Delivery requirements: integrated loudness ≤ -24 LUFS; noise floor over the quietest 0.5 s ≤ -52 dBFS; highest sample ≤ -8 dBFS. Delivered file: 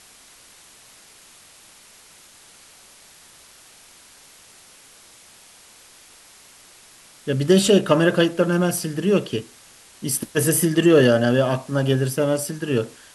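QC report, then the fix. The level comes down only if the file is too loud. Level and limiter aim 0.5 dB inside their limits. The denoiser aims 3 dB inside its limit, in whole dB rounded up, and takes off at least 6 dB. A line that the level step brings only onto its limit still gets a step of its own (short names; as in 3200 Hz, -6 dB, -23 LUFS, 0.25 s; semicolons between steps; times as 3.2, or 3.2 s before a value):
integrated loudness -19.5 LUFS: fail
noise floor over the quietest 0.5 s -49 dBFS: fail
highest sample -4.0 dBFS: fail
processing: gain -5 dB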